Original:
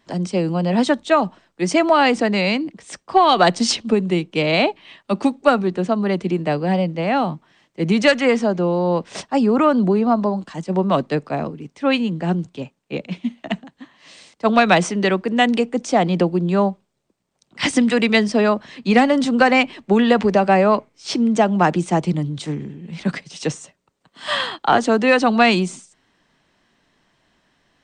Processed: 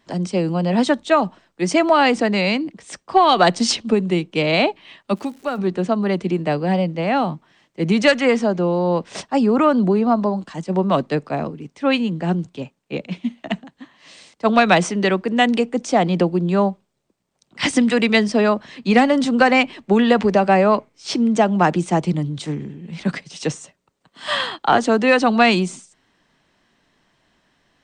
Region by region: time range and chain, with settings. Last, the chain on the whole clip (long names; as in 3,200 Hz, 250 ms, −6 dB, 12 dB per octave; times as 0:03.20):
0:05.14–0:05.57: downward compressor 1.5 to 1, threshold −36 dBFS + surface crackle 290 per second −37 dBFS
whole clip: no processing